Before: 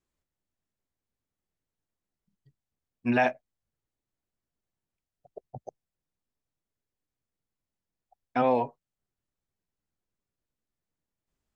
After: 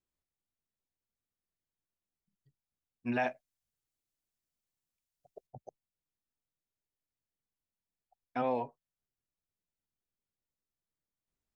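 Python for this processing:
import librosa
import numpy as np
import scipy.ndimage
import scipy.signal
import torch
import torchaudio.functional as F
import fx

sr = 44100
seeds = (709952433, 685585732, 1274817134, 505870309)

y = fx.high_shelf(x, sr, hz=2500.0, db=11.5, at=(3.31, 5.47))
y = y * librosa.db_to_amplitude(-8.0)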